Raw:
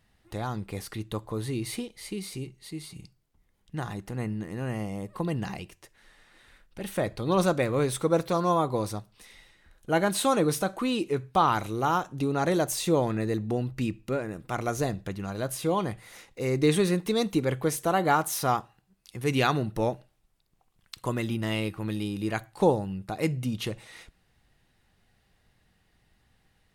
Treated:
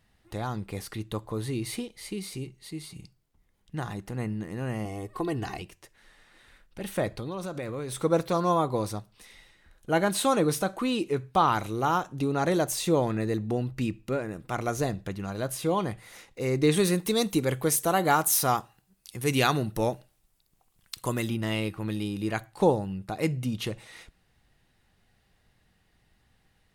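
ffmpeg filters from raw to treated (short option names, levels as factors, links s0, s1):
-filter_complex "[0:a]asettb=1/sr,asplit=3[s0][s1][s2];[s0]atrim=end=4.854[s3];[s1]atrim=start=4.85:end=5.62,asetpts=PTS-STARTPTS,afade=t=in:d=0.004:c=qsin,afade=t=out:st=0.766:d=0.004:c=qsin,aecho=1:1:2.7:0.7,atrim=end_sample=33957[s4];[s2]atrim=start=5.616[s5];[s3][s4]acrossfade=d=0.004:c1=hsin:c2=qsin[s6];[s6][s5]acrossfade=d=0.004:c1=qsin:c2=hsin,asettb=1/sr,asplit=3[s7][s8][s9];[s7]atrim=end=7.104[s10];[s8]atrim=start=7.1:end=7.98,asetpts=PTS-STARTPTS,afade=t=in:d=0.004:c=qsin,afade=t=out:st=0.876:d=0.004:c=qsin,acompressor=threshold=0.0316:ratio=8:attack=3.2:release=140:knee=1:detection=peak[s11];[s9]atrim=start=7.976[s12];[s10][s11]acrossfade=d=0.004:c1=hsin:c2=qsin[s13];[s13][s12]acrossfade=d=0.004:c1=qsin:c2=hsin,asettb=1/sr,asplit=3[s14][s15][s16];[s14]atrim=end=16.774[s17];[s15]atrim=start=16.77:end=21.3,asetpts=PTS-STARTPTS,afade=t=in:d=0.004:c=qsin,afade=t=out:st=4.526:d=0.004:c=qsin,highshelf=f=6000:g=11[s18];[s16]atrim=start=21.296[s19];[s17][s18]acrossfade=d=0.004:c1=hsin:c2=qsin[s20];[s20][s19]acrossfade=d=0.004:c1=qsin:c2=hsin"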